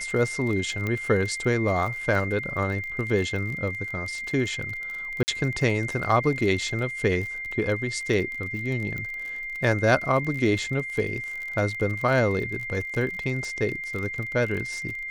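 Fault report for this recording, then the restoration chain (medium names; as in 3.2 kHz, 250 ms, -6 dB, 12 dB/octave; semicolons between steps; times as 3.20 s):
crackle 37 per s -31 dBFS
whine 2.1 kHz -31 dBFS
0.87 s: pop -16 dBFS
5.23–5.28 s: dropout 49 ms
8.98 s: pop -21 dBFS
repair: de-click; band-stop 2.1 kHz, Q 30; interpolate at 5.23 s, 49 ms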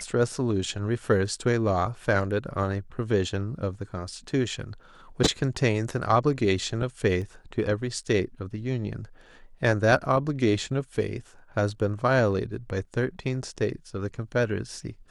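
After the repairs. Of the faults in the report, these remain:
nothing left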